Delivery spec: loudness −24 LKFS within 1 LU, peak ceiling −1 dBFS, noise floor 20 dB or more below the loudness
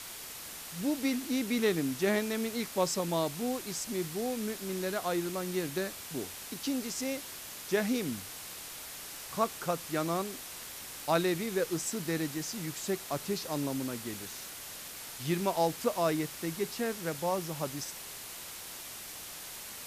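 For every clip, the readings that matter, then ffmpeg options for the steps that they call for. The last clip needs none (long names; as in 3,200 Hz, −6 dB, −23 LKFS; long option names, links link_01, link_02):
background noise floor −45 dBFS; target noise floor −54 dBFS; integrated loudness −34.0 LKFS; sample peak −15.5 dBFS; target loudness −24.0 LKFS
→ -af "afftdn=noise_reduction=9:noise_floor=-45"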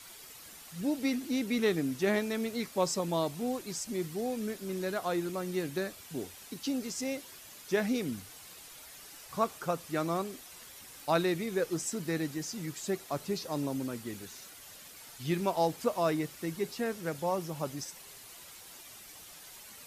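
background noise floor −51 dBFS; target noise floor −54 dBFS
→ -af "afftdn=noise_reduction=6:noise_floor=-51"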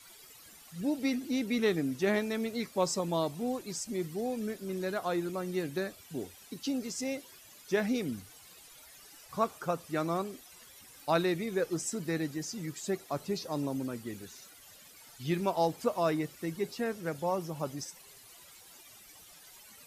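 background noise floor −55 dBFS; integrated loudness −34.0 LKFS; sample peak −16.0 dBFS; target loudness −24.0 LKFS
→ -af "volume=10dB"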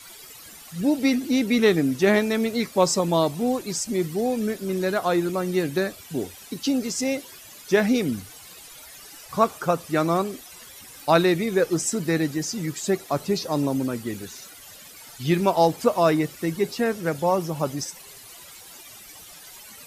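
integrated loudness −24.0 LKFS; sample peak −6.0 dBFS; background noise floor −45 dBFS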